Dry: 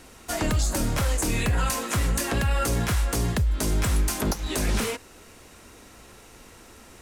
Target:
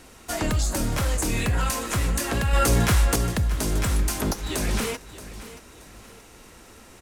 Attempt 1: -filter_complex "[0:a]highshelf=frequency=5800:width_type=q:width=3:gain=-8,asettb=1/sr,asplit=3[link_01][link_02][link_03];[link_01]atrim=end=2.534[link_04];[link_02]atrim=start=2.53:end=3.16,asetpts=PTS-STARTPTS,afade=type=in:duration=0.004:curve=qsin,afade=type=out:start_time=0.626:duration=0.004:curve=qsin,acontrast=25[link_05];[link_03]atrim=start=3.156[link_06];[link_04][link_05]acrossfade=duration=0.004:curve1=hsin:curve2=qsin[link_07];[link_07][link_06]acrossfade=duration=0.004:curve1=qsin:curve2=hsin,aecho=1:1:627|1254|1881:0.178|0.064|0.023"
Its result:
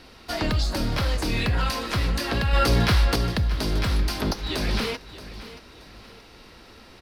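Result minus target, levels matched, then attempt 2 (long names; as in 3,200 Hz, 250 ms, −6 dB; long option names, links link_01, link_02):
8,000 Hz band −9.5 dB
-filter_complex "[0:a]asettb=1/sr,asplit=3[link_01][link_02][link_03];[link_01]atrim=end=2.534[link_04];[link_02]atrim=start=2.53:end=3.16,asetpts=PTS-STARTPTS,afade=type=in:duration=0.004:curve=qsin,afade=type=out:start_time=0.626:duration=0.004:curve=qsin,acontrast=25[link_05];[link_03]atrim=start=3.156[link_06];[link_04][link_05]acrossfade=duration=0.004:curve1=hsin:curve2=qsin[link_07];[link_07][link_06]acrossfade=duration=0.004:curve1=qsin:curve2=hsin,aecho=1:1:627|1254|1881:0.178|0.064|0.023"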